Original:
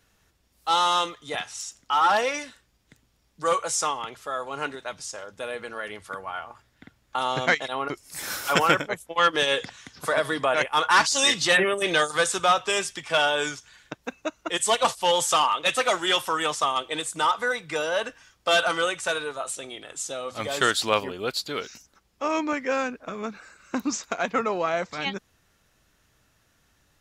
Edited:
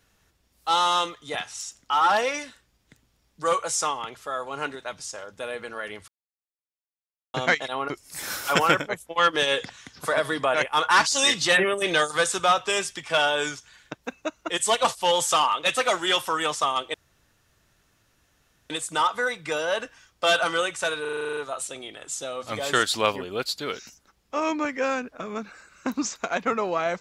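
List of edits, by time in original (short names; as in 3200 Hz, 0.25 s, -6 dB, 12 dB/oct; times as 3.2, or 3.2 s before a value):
6.08–7.34 mute
16.94 insert room tone 1.76 s
19.25 stutter 0.04 s, 10 plays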